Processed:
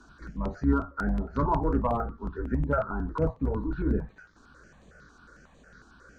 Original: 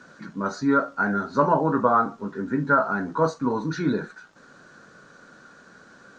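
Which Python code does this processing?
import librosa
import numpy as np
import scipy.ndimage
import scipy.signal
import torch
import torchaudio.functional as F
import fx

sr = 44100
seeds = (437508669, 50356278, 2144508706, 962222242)

p1 = fx.octave_divider(x, sr, octaves=2, level_db=-6.0)
p2 = fx.low_shelf(p1, sr, hz=85.0, db=11.0)
p3 = fx.env_lowpass_down(p2, sr, base_hz=1200.0, full_db=-20.0)
p4 = np.clip(10.0 ** (12.5 / 20.0) * p3, -1.0, 1.0) / 10.0 ** (12.5 / 20.0)
p5 = p3 + F.gain(torch.from_numpy(p4), -6.0).numpy()
p6 = fx.phaser_held(p5, sr, hz=11.0, low_hz=540.0, high_hz=5200.0)
y = F.gain(torch.from_numpy(p6), -6.5).numpy()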